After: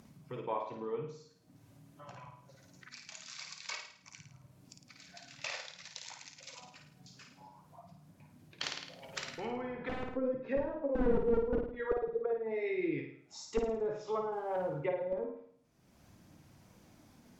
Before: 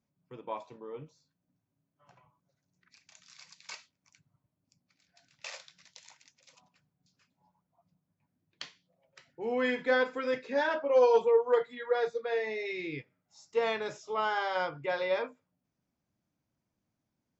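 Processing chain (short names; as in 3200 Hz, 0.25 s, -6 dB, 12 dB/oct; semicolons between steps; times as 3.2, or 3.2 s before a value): wrapped overs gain 19 dB; phaser 0.49 Hz, delay 4.9 ms, feedback 25%; in parallel at -3 dB: upward compressor, threshold -33 dBFS; on the sum: treble ducked by the level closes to 360 Hz, closed at -23 dBFS; 14.32–14.81 sample leveller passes 1; on a send: flutter echo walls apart 9.2 m, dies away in 0.58 s; 8.63–10.17 on the sum: spectral compressor 2:1; gain -3.5 dB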